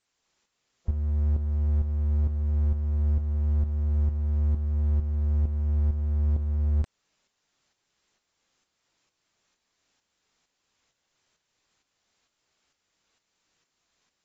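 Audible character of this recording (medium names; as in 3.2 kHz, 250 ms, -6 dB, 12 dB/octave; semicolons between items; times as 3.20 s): a quantiser's noise floor 12-bit, dither triangular; tremolo saw up 2.2 Hz, depth 60%; AAC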